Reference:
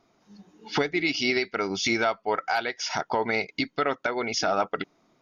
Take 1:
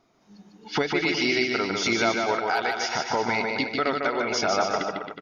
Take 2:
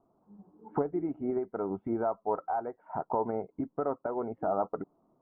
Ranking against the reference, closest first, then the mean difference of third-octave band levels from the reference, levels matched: 1, 2; 6.5, 9.0 decibels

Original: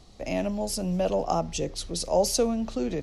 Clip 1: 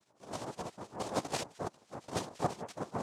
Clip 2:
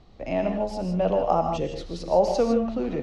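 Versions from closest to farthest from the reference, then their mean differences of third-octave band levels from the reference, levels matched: 2, 1; 5.5, 10.0 decibels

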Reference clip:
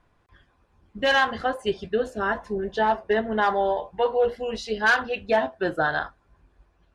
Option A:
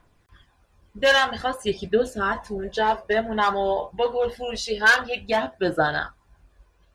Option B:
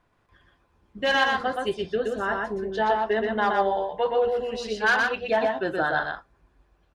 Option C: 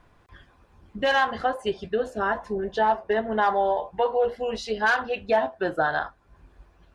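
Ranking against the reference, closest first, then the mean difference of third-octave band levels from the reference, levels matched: C, A, B; 1.5, 2.5, 4.5 decibels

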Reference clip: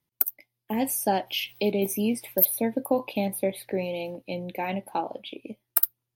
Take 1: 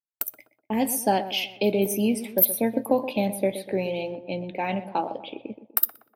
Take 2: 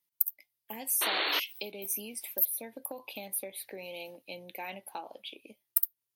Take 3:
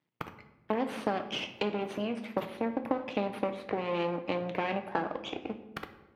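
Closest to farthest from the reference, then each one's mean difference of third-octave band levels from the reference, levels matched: 1, 2, 3; 3.5, 7.0, 11.5 decibels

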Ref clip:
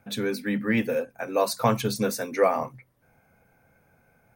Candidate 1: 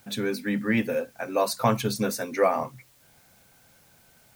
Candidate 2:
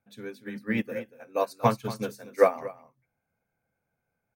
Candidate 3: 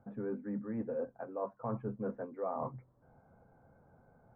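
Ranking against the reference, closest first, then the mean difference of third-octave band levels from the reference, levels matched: 1, 2, 3; 1.5, 7.5, 10.5 decibels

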